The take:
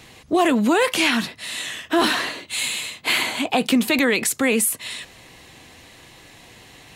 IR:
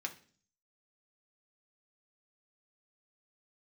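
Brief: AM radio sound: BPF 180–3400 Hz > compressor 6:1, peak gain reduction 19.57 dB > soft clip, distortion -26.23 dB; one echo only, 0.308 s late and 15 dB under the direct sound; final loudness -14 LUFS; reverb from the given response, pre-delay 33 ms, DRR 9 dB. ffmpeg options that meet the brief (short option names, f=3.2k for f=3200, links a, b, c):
-filter_complex "[0:a]aecho=1:1:308:0.178,asplit=2[a][b];[1:a]atrim=start_sample=2205,adelay=33[c];[b][c]afir=irnorm=-1:irlink=0,volume=-9.5dB[d];[a][d]amix=inputs=2:normalize=0,highpass=180,lowpass=3.4k,acompressor=threshold=-34dB:ratio=6,asoftclip=threshold=-23.5dB,volume=23dB"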